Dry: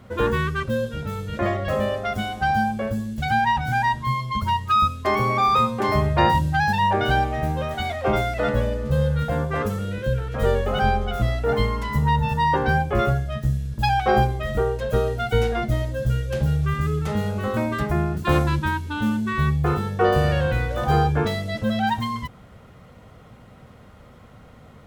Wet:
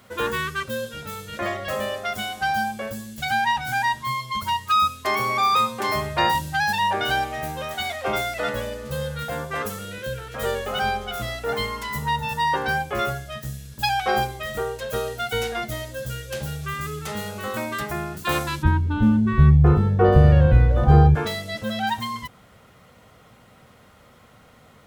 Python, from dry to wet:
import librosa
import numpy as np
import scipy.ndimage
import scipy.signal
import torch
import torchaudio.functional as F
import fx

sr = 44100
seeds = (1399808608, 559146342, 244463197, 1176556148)

y = fx.tilt_eq(x, sr, slope=fx.steps((0.0, 3.0), (18.62, -3.0), (21.14, 2.0)))
y = y * 10.0 ** (-1.5 / 20.0)